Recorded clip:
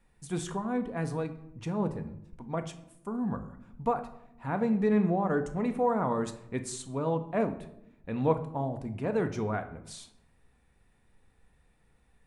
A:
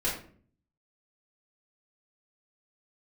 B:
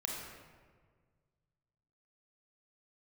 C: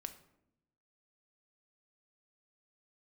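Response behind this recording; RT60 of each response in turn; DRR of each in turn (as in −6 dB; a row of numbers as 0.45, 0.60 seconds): C; 0.50, 1.6, 0.80 seconds; −7.0, −2.0, 7.0 decibels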